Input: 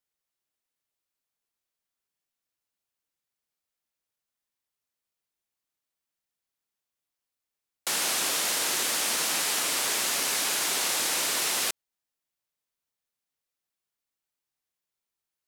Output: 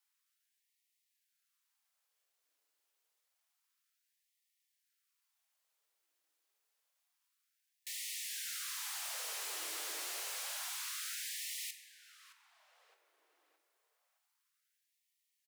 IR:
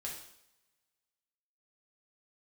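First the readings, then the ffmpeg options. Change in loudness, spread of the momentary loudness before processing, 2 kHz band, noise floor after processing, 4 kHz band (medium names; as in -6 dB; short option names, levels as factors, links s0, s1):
-14.5 dB, 3 LU, -15.5 dB, -84 dBFS, -15.0 dB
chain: -filter_complex "[0:a]aeval=exprs='max(val(0),0)':c=same,aeval=exprs='(tanh(112*val(0)+0.65)-tanh(0.65))/112':c=same,asplit=2[s0][s1];[s1]adelay=617,lowpass=f=2900:p=1,volume=0.224,asplit=2[s2][s3];[s3]adelay=617,lowpass=f=2900:p=1,volume=0.47,asplit=2[s4][s5];[s5]adelay=617,lowpass=f=2900:p=1,volume=0.47,asplit=2[s6][s7];[s7]adelay=617,lowpass=f=2900:p=1,volume=0.47,asplit=2[s8][s9];[s9]adelay=617,lowpass=f=2900:p=1,volume=0.47[s10];[s0][s2][s4][s6][s8][s10]amix=inputs=6:normalize=0,asplit=2[s11][s12];[1:a]atrim=start_sample=2205,asetrate=34398,aresample=44100[s13];[s12][s13]afir=irnorm=-1:irlink=0,volume=0.422[s14];[s11][s14]amix=inputs=2:normalize=0,afftfilt=real='re*gte(b*sr/1024,280*pow(1800/280,0.5+0.5*sin(2*PI*0.28*pts/sr)))':imag='im*gte(b*sr/1024,280*pow(1800/280,0.5+0.5*sin(2*PI*0.28*pts/sr)))':win_size=1024:overlap=0.75,volume=3.35"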